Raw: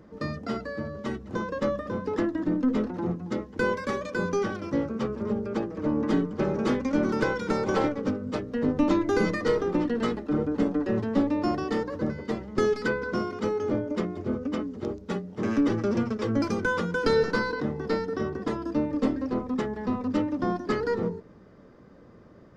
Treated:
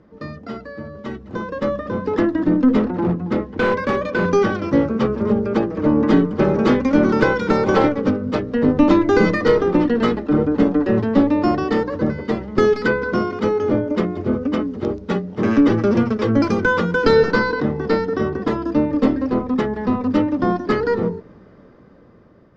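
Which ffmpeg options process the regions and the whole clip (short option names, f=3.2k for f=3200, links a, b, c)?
-filter_complex "[0:a]asettb=1/sr,asplit=3[a][b][c];[a]atrim=end=2.794[d];[b]atrim=start=2.79:end=4.29,asetpts=PTS-STARTPTS,afade=t=in:d=0.004:c=qsin,afade=t=out:st=1.496:d=0.004:c=qsin,lowpass=f=3.4k:p=1,volume=24.5dB,asoftclip=hard,volume=-24.5dB[e];[c]atrim=start=4.286[f];[d][e]acrossfade=d=0.004:c1=hsin:c2=qsin[g];[g][f]acrossfade=d=0.004:c1=qsin:c2=hsin,lowpass=4.6k,dynaudnorm=f=760:g=5:m=11.5dB"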